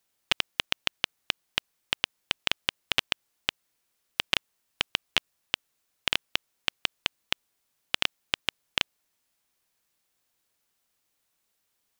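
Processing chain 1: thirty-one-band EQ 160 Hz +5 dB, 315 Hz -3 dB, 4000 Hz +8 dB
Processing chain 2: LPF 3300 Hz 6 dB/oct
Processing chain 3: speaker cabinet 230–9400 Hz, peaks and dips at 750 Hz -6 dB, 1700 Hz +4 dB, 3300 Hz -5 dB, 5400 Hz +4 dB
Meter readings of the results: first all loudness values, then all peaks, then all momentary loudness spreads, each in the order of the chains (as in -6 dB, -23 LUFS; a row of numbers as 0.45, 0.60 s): -28.5, -33.0, -32.0 LUFS; -1.5, -5.0, -3.0 dBFS; 6, 6, 6 LU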